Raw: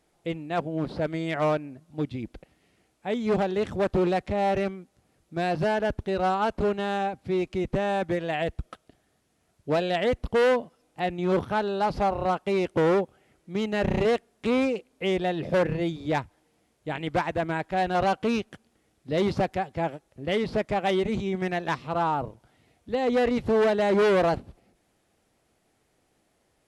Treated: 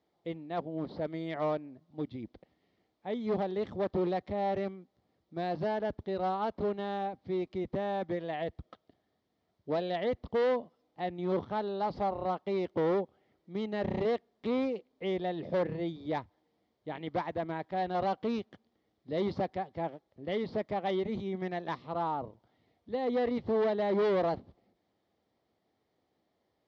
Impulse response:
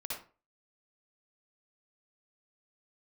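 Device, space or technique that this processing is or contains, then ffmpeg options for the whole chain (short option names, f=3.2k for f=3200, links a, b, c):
guitar cabinet: -filter_complex "[0:a]highpass=89,equalizer=f=140:t=q:w=4:g=-5,equalizer=f=1.5k:t=q:w=4:g=-8,equalizer=f=2.6k:t=q:w=4:g=-10,lowpass=f=4.6k:w=0.5412,lowpass=f=4.6k:w=1.3066,asettb=1/sr,asplit=3[a][b][c];[a]atrim=end=23.114[d];[b]atrim=start=23.11:end=24.05,asetpts=PTS-STARTPTS,afade=t=in:d=0.004:c=qsin,afade=t=out:st=0.936:d=0.004:c=qsin,lowpass=7.2k[e];[c]atrim=start=24.046[f];[d][e]acrossfade=d=0.004:c1=hsin:c2=qsin[g];[g][f]acrossfade=d=0.004:c1=qsin:c2=hsin,volume=-6.5dB"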